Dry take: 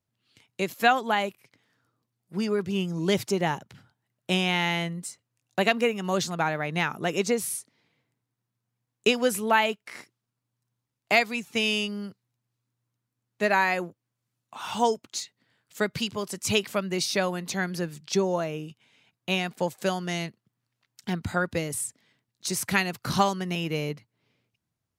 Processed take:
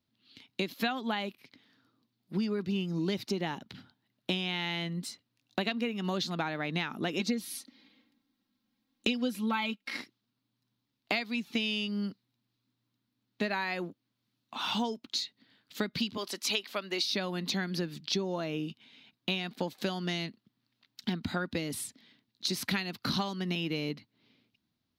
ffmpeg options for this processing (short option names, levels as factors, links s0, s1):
-filter_complex "[0:a]asettb=1/sr,asplit=3[s0][s1][s2];[s0]atrim=end=2.514[s3];[s1]atrim=start=2.51:end=3.31,asetpts=PTS-STARTPTS,afade=t=in:d=0.004:c=qsin,afade=t=out:st=0.796:d=0.004:c=qsin,bandreject=f=3300:w=12[s4];[s2]atrim=start=3.306[s5];[s3][s4]acrossfade=d=0.004:c1=hsin:c2=qsin[s6];[s6][s5]acrossfade=d=0.004:c1=qsin:c2=hsin,asettb=1/sr,asplit=3[s7][s8][s9];[s7]atrim=end=7.194[s10];[s8]atrim=start=7.19:end=9.97,asetpts=PTS-STARTPTS,afade=t=in:d=0.004:c=qsin,afade=t=out:st=2.776:d=0.004:c=qsin,aecho=1:1:3.7:0.97,atrim=end_sample=122598[s11];[s9]atrim=start=9.966[s12];[s10][s11]acrossfade=d=0.004:c1=hsin:c2=qsin[s13];[s13][s12]acrossfade=d=0.004:c1=qsin:c2=hsin,asettb=1/sr,asplit=3[s14][s15][s16];[s14]atrim=end=16.174[s17];[s15]atrim=start=16.17:end=17.04,asetpts=PTS-STARTPTS,afade=t=in:d=0.004:c=qsin,afade=t=out:st=0.866:d=0.004:c=qsin,highpass=460[s18];[s16]atrim=start=17.036[s19];[s17][s18]acrossfade=d=0.004:c1=hsin:c2=qsin[s20];[s20][s19]acrossfade=d=0.004:c1=qsin:c2=hsin,equalizer=f=125:t=o:w=1:g=-5,equalizer=f=250:t=o:w=1:g=11,equalizer=f=500:t=o:w=1:g=-3,equalizer=f=4000:t=o:w=1:g=12,equalizer=f=8000:t=o:w=1:g=-11,acompressor=threshold=0.0355:ratio=6"